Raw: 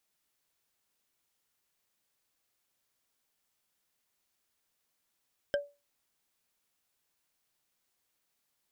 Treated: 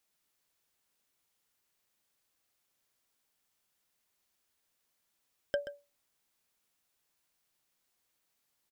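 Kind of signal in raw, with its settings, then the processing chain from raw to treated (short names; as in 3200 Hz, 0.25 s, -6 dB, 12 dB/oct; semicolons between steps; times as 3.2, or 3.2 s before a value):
wood hit, lowest mode 574 Hz, decay 0.27 s, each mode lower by 5 dB, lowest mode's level -23 dB
echo 0.13 s -11 dB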